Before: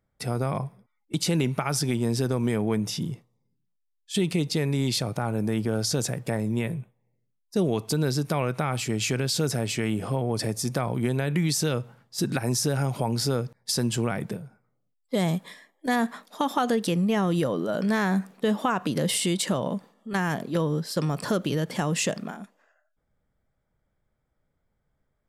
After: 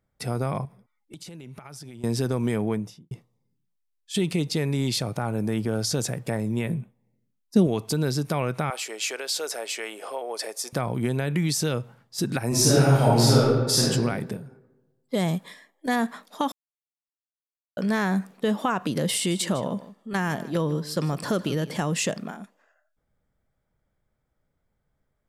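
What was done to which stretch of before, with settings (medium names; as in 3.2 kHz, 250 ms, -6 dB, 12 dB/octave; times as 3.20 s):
0.65–2.04 s: compression 12:1, threshold -38 dBFS
2.62–3.11 s: studio fade out
6.68–7.67 s: peaking EQ 230 Hz +10 dB
8.70–10.73 s: high-pass 460 Hz 24 dB/octave
12.48–13.80 s: reverb throw, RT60 1.3 s, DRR -8 dB
16.52–17.77 s: mute
19.15–21.77 s: delay 155 ms -16.5 dB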